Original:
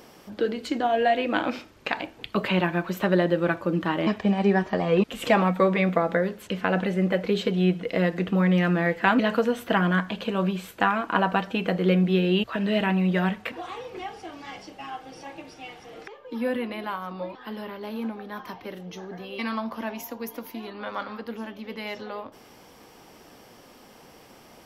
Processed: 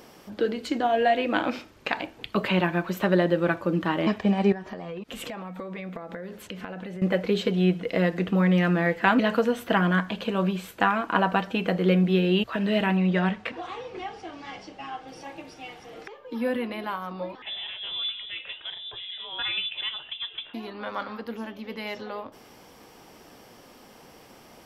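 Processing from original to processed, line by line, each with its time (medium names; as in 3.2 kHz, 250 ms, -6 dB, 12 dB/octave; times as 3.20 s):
4.52–7.02 s: compression 16:1, threshold -32 dBFS
12.97–15.08 s: low-pass 6.4 kHz
17.42–20.54 s: frequency inversion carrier 3.7 kHz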